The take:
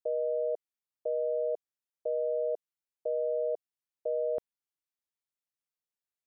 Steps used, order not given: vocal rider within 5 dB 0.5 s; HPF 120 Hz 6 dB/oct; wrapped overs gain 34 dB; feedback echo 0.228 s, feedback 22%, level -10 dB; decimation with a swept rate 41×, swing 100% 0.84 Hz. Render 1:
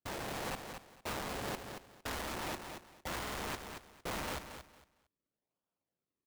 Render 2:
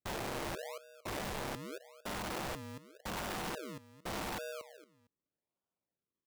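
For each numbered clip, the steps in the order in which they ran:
decimation with a swept rate > HPF > wrapped overs > feedback echo > vocal rider; vocal rider > feedback echo > decimation with a swept rate > HPF > wrapped overs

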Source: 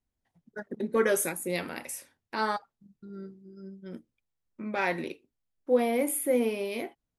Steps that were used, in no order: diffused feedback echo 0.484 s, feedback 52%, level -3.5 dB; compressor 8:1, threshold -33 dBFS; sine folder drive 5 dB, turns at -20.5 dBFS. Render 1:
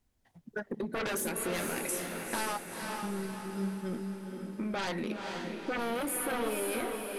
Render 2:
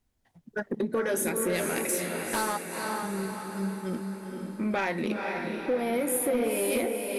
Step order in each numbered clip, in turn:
sine folder > compressor > diffused feedback echo; compressor > diffused feedback echo > sine folder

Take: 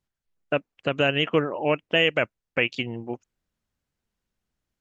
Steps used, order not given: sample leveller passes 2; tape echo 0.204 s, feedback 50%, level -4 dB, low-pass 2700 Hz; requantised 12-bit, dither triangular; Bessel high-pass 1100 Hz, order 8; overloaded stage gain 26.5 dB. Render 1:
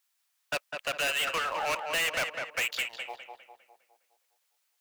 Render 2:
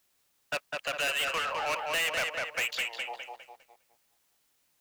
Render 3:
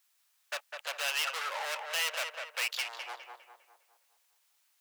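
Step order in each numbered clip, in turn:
requantised > Bessel high-pass > sample leveller > tape echo > overloaded stage; Bessel high-pass > tape echo > overloaded stage > sample leveller > requantised; sample leveller > requantised > tape echo > overloaded stage > Bessel high-pass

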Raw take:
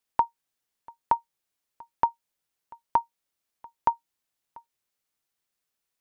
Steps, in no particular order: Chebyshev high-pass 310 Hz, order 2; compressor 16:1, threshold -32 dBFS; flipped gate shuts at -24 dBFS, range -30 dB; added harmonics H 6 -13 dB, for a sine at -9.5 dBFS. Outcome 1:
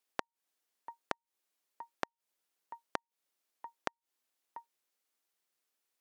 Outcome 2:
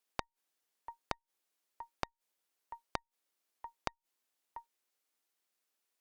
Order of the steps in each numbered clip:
compressor > added harmonics > Chebyshev high-pass > flipped gate; Chebyshev high-pass > added harmonics > flipped gate > compressor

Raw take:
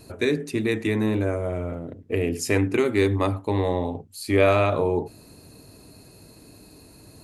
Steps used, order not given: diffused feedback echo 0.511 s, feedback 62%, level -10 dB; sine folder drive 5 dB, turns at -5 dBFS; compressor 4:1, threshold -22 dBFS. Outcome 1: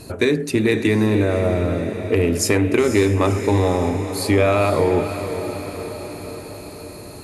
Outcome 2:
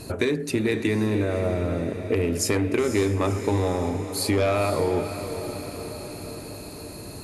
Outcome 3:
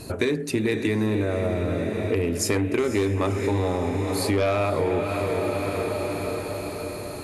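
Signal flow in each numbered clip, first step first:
compressor > diffused feedback echo > sine folder; sine folder > compressor > diffused feedback echo; diffused feedback echo > sine folder > compressor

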